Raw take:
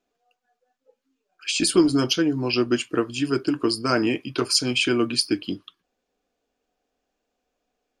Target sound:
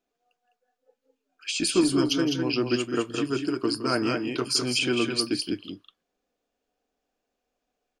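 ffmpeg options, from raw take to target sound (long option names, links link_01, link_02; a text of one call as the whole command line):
ffmpeg -i in.wav -af "aecho=1:1:165|205:0.211|0.562,volume=-4.5dB" out.wav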